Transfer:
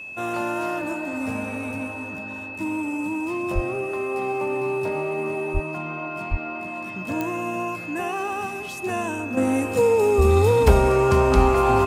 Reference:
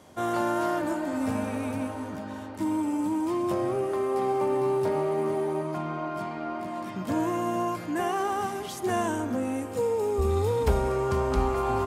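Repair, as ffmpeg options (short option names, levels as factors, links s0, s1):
-filter_complex "[0:a]adeclick=t=4,bandreject=f=2600:w=30,asplit=3[s0][s1][s2];[s0]afade=t=out:st=3.54:d=0.02[s3];[s1]highpass=f=140:w=0.5412,highpass=f=140:w=1.3066,afade=t=in:st=3.54:d=0.02,afade=t=out:st=3.66:d=0.02[s4];[s2]afade=t=in:st=3.66:d=0.02[s5];[s3][s4][s5]amix=inputs=3:normalize=0,asplit=3[s6][s7][s8];[s6]afade=t=out:st=5.53:d=0.02[s9];[s7]highpass=f=140:w=0.5412,highpass=f=140:w=1.3066,afade=t=in:st=5.53:d=0.02,afade=t=out:st=5.65:d=0.02[s10];[s8]afade=t=in:st=5.65:d=0.02[s11];[s9][s10][s11]amix=inputs=3:normalize=0,asplit=3[s12][s13][s14];[s12]afade=t=out:st=6.3:d=0.02[s15];[s13]highpass=f=140:w=0.5412,highpass=f=140:w=1.3066,afade=t=in:st=6.3:d=0.02,afade=t=out:st=6.42:d=0.02[s16];[s14]afade=t=in:st=6.42:d=0.02[s17];[s15][s16][s17]amix=inputs=3:normalize=0,asetnsamples=n=441:p=0,asendcmd='9.37 volume volume -8.5dB',volume=1"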